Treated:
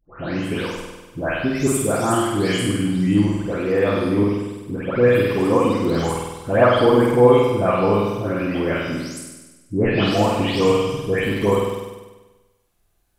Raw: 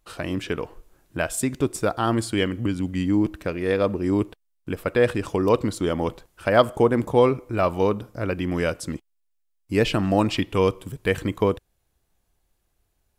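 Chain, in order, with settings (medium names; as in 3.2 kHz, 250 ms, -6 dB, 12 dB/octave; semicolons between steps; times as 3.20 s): delay that grows with frequency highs late, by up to 368 ms; flutter echo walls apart 8.4 m, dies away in 1.2 s; trim +1.5 dB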